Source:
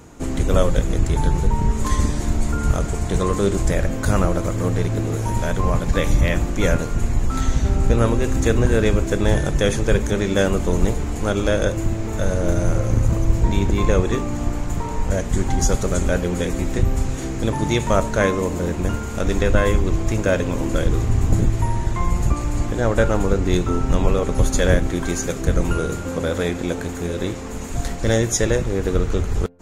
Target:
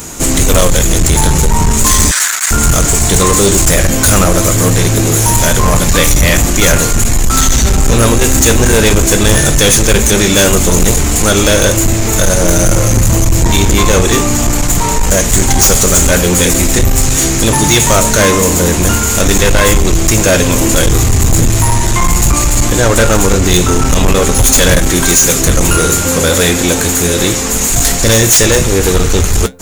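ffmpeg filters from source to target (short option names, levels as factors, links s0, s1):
-filter_complex "[0:a]crystalizer=i=6:c=0,aeval=exprs='2.11*sin(PI/2*3.98*val(0)/2.11)':c=same,flanger=delay=5.2:depth=8:regen=-71:speed=0.4:shape=sinusoidal,asoftclip=type=tanh:threshold=0.531,asettb=1/sr,asplit=3[s0][s1][s2];[s0]atrim=end=2.114[s3];[s1]atrim=start=2.11:end=2.51,asetpts=PTS-STARTPTS,afade=t=in:d=0.004:c=qsin,afade=t=out:st=0.396:d=0.004:c=qsin,highpass=f=1500:t=q:w=3.4[s4];[s2]atrim=start=2.506[s5];[s3][s4]acrossfade=d=0.004:c1=hsin:c2=qsin[s6];[s6][s5]acrossfade=d=0.004:c1=qsin:c2=hsin,volume=1.19"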